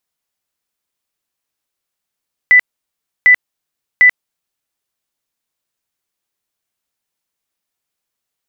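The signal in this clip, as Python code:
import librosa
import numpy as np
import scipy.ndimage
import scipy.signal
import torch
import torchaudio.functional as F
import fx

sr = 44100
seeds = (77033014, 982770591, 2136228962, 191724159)

y = fx.tone_burst(sr, hz=1990.0, cycles=170, every_s=0.75, bursts=3, level_db=-3.5)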